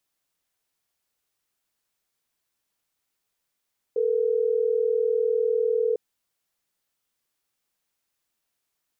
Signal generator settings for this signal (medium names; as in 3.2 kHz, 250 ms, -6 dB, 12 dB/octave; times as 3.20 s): call progress tone ringback tone, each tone -23 dBFS